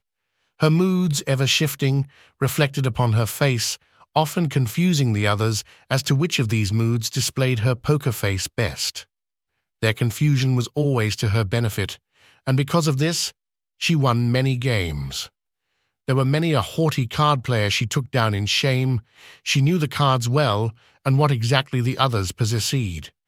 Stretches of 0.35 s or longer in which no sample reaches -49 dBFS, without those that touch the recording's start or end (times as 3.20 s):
9.04–9.82 s
13.31–13.80 s
15.29–16.08 s